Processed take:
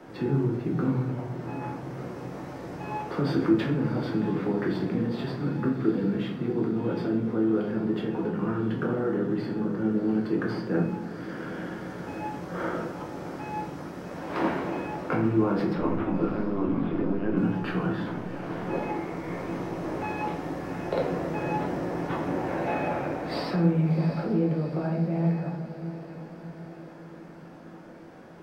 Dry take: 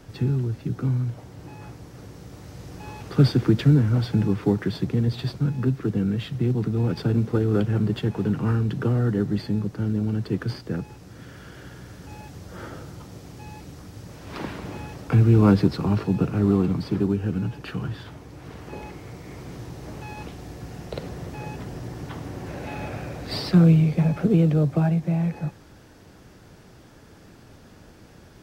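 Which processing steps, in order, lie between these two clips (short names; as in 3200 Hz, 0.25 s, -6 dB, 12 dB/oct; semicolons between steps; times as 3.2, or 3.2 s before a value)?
15.73–17.37 LPC vocoder at 8 kHz pitch kept; limiter -17 dBFS, peak gain reduction 11.5 dB; three-band isolator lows -20 dB, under 190 Hz, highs -13 dB, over 2300 Hz; shoebox room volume 110 m³, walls mixed, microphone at 0.92 m; vocal rider within 5 dB 2 s; diffused feedback echo 0.728 s, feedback 54%, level -12 dB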